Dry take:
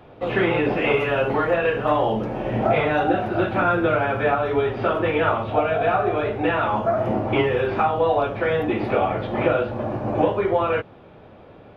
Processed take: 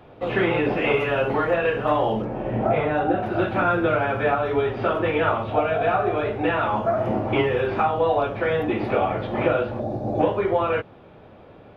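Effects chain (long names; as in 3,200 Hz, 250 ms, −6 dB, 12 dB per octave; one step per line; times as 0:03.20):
0:02.22–0:03.23: high-shelf EQ 2,400 Hz −10.5 dB
0:09.79–0:10.20: gain on a spectral selection 850–3,400 Hz −13 dB
level −1 dB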